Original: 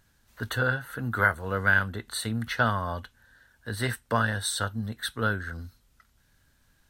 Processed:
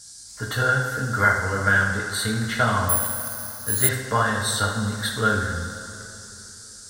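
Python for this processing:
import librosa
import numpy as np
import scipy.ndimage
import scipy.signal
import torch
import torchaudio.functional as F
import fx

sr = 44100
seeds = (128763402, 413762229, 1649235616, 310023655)

p1 = fx.peak_eq(x, sr, hz=2800.0, db=-4.0, octaves=0.22)
p2 = fx.rider(p1, sr, range_db=10, speed_s=0.5)
p3 = p1 + F.gain(torch.from_numpy(p2), -0.5).numpy()
p4 = fx.dmg_noise_band(p3, sr, seeds[0], low_hz=4400.0, high_hz=9500.0, level_db=-42.0)
p5 = p4 + fx.echo_bbd(p4, sr, ms=77, stages=2048, feedback_pct=69, wet_db=-9.5, dry=0)
p6 = fx.rev_double_slope(p5, sr, seeds[1], early_s=0.39, late_s=3.7, knee_db=-18, drr_db=-2.0)
p7 = fx.resample_bad(p6, sr, factor=4, down='filtered', up='zero_stuff', at=(2.89, 3.89))
y = F.gain(torch.from_numpy(p7), -5.0).numpy()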